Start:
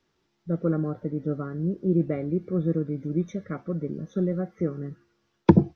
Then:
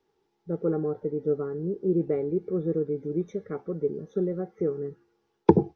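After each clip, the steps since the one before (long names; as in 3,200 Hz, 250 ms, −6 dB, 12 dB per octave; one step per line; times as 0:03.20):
hollow resonant body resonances 430/810 Hz, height 17 dB, ringing for 45 ms
level −7 dB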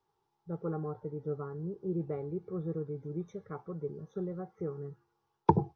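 graphic EQ with 10 bands 125 Hz +8 dB, 250 Hz −8 dB, 500 Hz −5 dB, 1,000 Hz +10 dB, 2,000 Hz −5 dB
level −6 dB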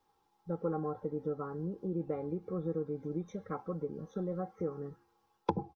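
downward compressor 2.5 to 1, threshold −37 dBFS, peak gain reduction 13.5 dB
comb filter 3.8 ms, depth 59%
level +4.5 dB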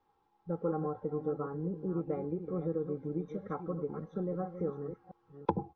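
delay that plays each chunk backwards 341 ms, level −9.5 dB
Bessel low-pass filter 2,400 Hz, order 2
level +1 dB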